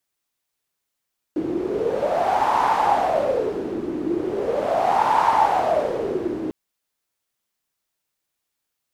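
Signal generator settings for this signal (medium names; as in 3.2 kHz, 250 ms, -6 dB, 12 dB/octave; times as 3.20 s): wind-like swept noise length 5.15 s, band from 320 Hz, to 910 Hz, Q 7.5, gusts 2, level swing 7.5 dB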